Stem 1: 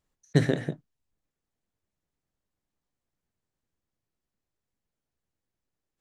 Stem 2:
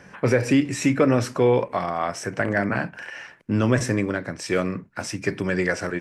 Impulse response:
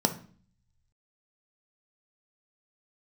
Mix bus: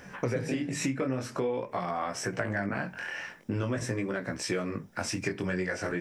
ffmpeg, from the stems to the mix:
-filter_complex "[0:a]acompressor=mode=upward:threshold=-36dB:ratio=2.5,volume=-9dB,asplit=2[link_01][link_02];[link_02]volume=-9.5dB[link_03];[1:a]flanger=delay=15.5:depth=7.6:speed=0.47,volume=2.5dB[link_04];[2:a]atrim=start_sample=2205[link_05];[link_03][link_05]afir=irnorm=-1:irlink=0[link_06];[link_01][link_04][link_06]amix=inputs=3:normalize=0,acompressor=threshold=-28dB:ratio=6"

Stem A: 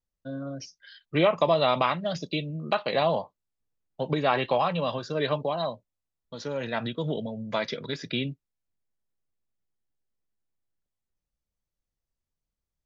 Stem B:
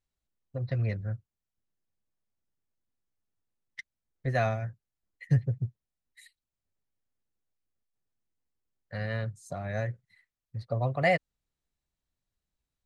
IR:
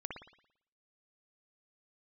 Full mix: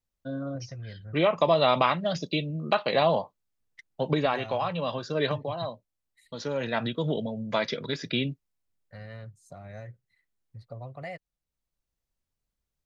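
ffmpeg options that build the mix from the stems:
-filter_complex "[0:a]volume=1.5dB[link_01];[1:a]acompressor=threshold=-30dB:ratio=2.5,bandreject=frequency=1700:width=17,volume=-8dB,asplit=2[link_02][link_03];[link_03]apad=whole_len=566692[link_04];[link_01][link_04]sidechaincompress=threshold=-43dB:ratio=3:attack=28:release=1160[link_05];[link_05][link_02]amix=inputs=2:normalize=0"

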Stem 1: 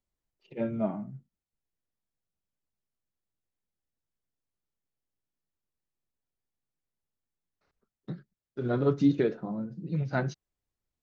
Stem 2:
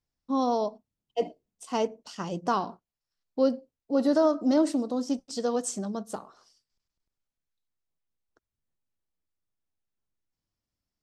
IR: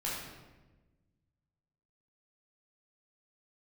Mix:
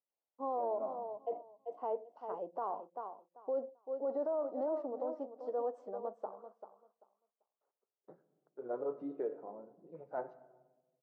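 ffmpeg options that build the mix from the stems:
-filter_complex "[0:a]volume=-5.5dB,asplit=2[link_01][link_02];[link_02]volume=-16.5dB[link_03];[1:a]adelay=100,volume=-3.5dB,asplit=2[link_04][link_05];[link_05]volume=-11dB[link_06];[2:a]atrim=start_sample=2205[link_07];[link_03][link_07]afir=irnorm=-1:irlink=0[link_08];[link_06]aecho=0:1:390|780|1170:1|0.18|0.0324[link_09];[link_01][link_04][link_08][link_09]amix=inputs=4:normalize=0,asuperpass=centerf=660:order=4:qfactor=1.2,alimiter=level_in=4.5dB:limit=-24dB:level=0:latency=1:release=22,volume=-4.5dB"

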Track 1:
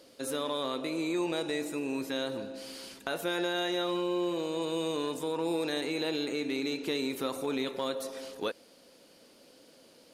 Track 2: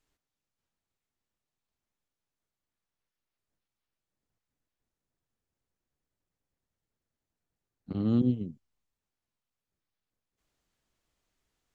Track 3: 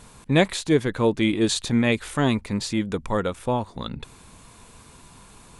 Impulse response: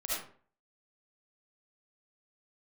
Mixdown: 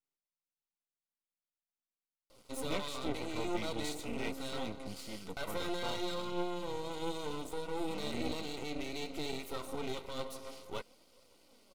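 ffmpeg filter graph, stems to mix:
-filter_complex "[0:a]flanger=delay=1.4:depth=7.2:regen=47:speed=0.56:shape=triangular,adelay=2300,volume=1.5dB[link_01];[1:a]highpass=frequency=150:width=0.5412,highpass=frequency=150:width=1.3066,volume=-11.5dB[link_02];[2:a]flanger=delay=9.4:depth=1.9:regen=44:speed=0.22:shape=triangular,adelay=2350,volume=-10.5dB[link_03];[link_01][link_02][link_03]amix=inputs=3:normalize=0,aeval=exprs='max(val(0),0)':channel_layout=same,asuperstop=centerf=1700:order=12:qfactor=6.5"

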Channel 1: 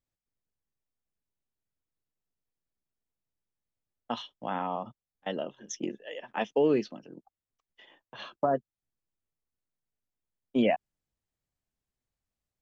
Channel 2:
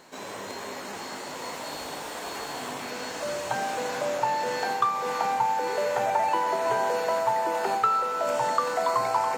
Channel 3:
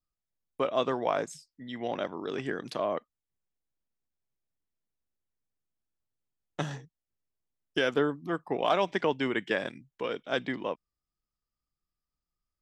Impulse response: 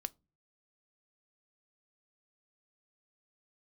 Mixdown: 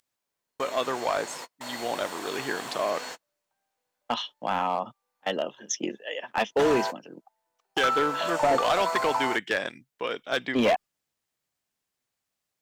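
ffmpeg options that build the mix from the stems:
-filter_complex "[0:a]highpass=110,acontrast=57,volume=3dB[link_01];[1:a]volume=-1dB[link_02];[2:a]agate=range=-14dB:threshold=-48dB:ratio=16:detection=peak,dynaudnorm=framelen=200:gausssize=9:maxgain=4.5dB,volume=1.5dB,asplit=2[link_03][link_04];[link_04]apad=whole_len=413524[link_05];[link_02][link_05]sidechaingate=range=-50dB:threshold=-46dB:ratio=16:detection=peak[link_06];[link_01][link_06][link_03]amix=inputs=3:normalize=0,lowshelf=frequency=430:gain=-10.5,volume=17.5dB,asoftclip=hard,volume=-17.5dB"

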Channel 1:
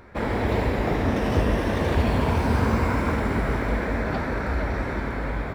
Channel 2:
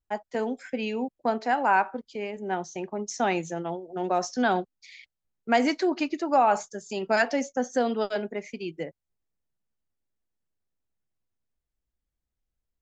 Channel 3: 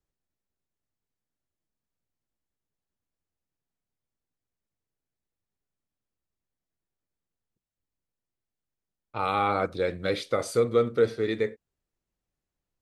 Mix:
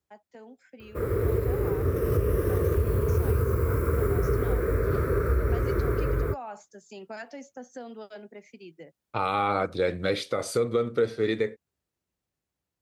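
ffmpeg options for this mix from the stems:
ffmpeg -i stem1.wav -i stem2.wav -i stem3.wav -filter_complex "[0:a]firequalizer=gain_entry='entry(120,0);entry(230,-17);entry(410,5);entry(790,-28);entry(1200,-3);entry(1700,-14);entry(3400,-21);entry(13000,12)':delay=0.05:min_phase=1,adelay=800,volume=1dB[link_01];[1:a]acrossover=split=150[link_02][link_03];[link_03]acompressor=threshold=-30dB:ratio=2[link_04];[link_02][link_04]amix=inputs=2:normalize=0,volume=-16.5dB[link_05];[2:a]volume=2dB[link_06];[link_01][link_05][link_06]amix=inputs=3:normalize=0,highpass=frequency=55:width=0.5412,highpass=frequency=55:width=1.3066,dynaudnorm=framelen=360:gausssize=13:maxgain=6dB,alimiter=limit=-15dB:level=0:latency=1:release=342" out.wav

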